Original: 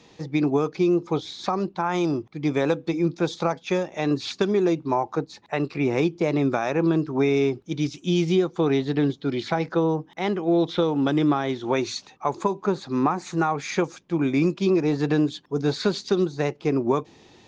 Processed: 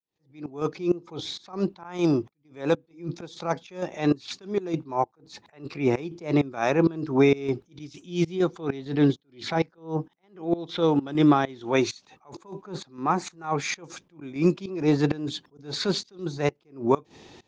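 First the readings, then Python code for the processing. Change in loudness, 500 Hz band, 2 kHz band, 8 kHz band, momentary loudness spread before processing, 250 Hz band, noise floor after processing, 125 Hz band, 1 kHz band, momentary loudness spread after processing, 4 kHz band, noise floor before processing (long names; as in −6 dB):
−2.5 dB, −3.5 dB, −2.5 dB, can't be measured, 6 LU, −3.0 dB, −68 dBFS, −2.5 dB, −2.5 dB, 15 LU, −1.5 dB, −54 dBFS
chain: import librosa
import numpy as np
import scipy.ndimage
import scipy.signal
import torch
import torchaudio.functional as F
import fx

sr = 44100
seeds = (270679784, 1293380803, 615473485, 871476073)

y = fx.fade_in_head(x, sr, length_s=0.67)
y = fx.volume_shaper(y, sr, bpm=131, per_beat=1, depth_db=-21, release_ms=154.0, shape='slow start')
y = fx.attack_slew(y, sr, db_per_s=170.0)
y = y * 10.0 ** (3.0 / 20.0)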